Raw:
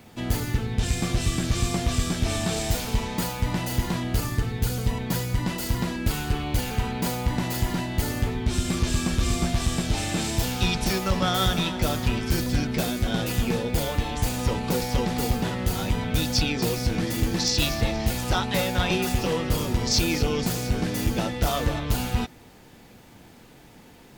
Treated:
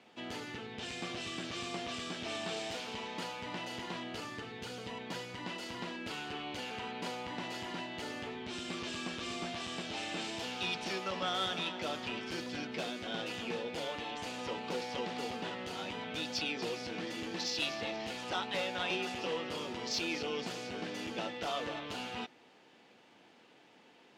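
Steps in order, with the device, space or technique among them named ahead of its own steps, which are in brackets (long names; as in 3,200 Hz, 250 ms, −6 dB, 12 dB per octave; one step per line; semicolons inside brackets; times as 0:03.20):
intercom (band-pass filter 320–4,800 Hz; parametric band 2,900 Hz +5 dB 0.41 octaves; soft clipping −15.5 dBFS, distortion −24 dB)
level −8.5 dB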